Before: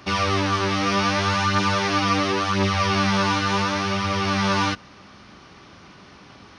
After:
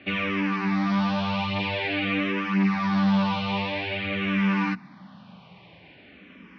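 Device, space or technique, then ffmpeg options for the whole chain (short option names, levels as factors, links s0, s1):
barber-pole phaser into a guitar amplifier: -filter_complex "[0:a]asplit=2[s0][s1];[s1]afreqshift=-0.49[s2];[s0][s2]amix=inputs=2:normalize=1,asoftclip=type=tanh:threshold=0.119,highpass=86,equalizer=f=89:t=q:w=4:g=-6,equalizer=f=180:t=q:w=4:g=9,equalizer=f=250:t=q:w=4:g=4,equalizer=f=380:t=q:w=4:g=-6,equalizer=f=1300:t=q:w=4:g=-8,equalizer=f=2400:t=q:w=4:g=5,lowpass=f=3500:w=0.5412,lowpass=f=3500:w=1.3066"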